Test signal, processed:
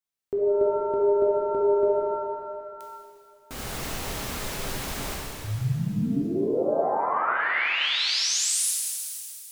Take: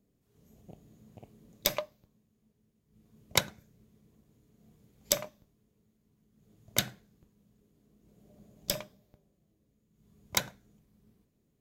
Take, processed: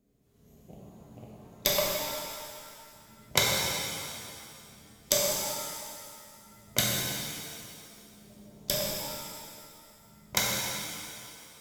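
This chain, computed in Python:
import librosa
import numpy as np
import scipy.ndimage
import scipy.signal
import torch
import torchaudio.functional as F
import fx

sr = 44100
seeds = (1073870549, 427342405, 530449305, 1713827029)

y = fx.rev_shimmer(x, sr, seeds[0], rt60_s=2.3, semitones=7, shimmer_db=-8, drr_db=-4.0)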